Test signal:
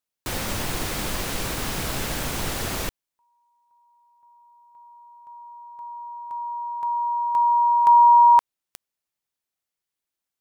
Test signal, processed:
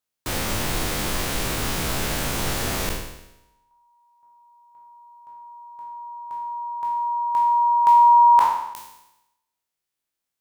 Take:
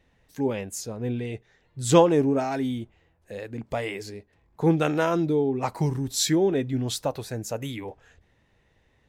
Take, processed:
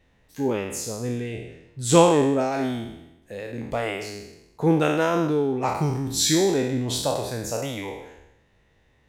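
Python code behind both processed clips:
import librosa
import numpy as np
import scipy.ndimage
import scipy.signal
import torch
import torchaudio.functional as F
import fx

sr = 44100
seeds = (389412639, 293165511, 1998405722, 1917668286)

y = fx.spec_trails(x, sr, decay_s=0.9)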